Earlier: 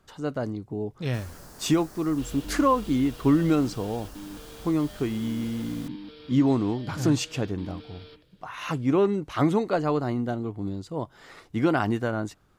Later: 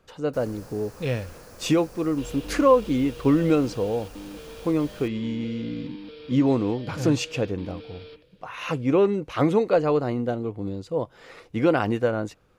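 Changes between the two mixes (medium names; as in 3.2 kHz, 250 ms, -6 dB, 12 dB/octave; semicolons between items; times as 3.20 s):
first sound: entry -0.80 s; master: add graphic EQ with 31 bands 500 Hz +11 dB, 2.5 kHz +6 dB, 8 kHz -3 dB, 16 kHz -9 dB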